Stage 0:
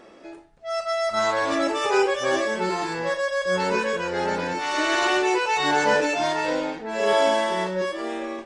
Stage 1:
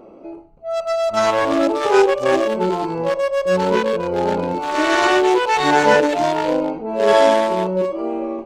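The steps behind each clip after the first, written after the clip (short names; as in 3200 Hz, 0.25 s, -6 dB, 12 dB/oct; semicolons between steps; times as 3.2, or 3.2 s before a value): Wiener smoothing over 25 samples; gain +8 dB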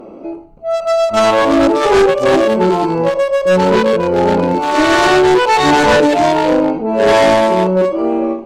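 bell 240 Hz +3.5 dB 0.85 oct; in parallel at -9.5 dB: sine folder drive 11 dB, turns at -1 dBFS; on the sum: ending taper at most 130 dB/s; gain -1.5 dB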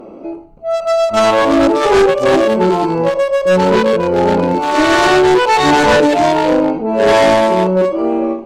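nothing audible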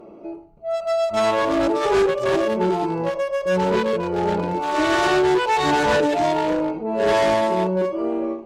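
notch comb 260 Hz; gain -7.5 dB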